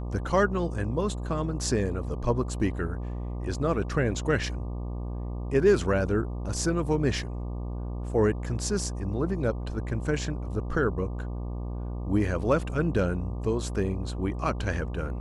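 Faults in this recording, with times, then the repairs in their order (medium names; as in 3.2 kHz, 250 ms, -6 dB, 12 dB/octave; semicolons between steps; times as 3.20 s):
buzz 60 Hz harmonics 20 -33 dBFS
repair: de-hum 60 Hz, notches 20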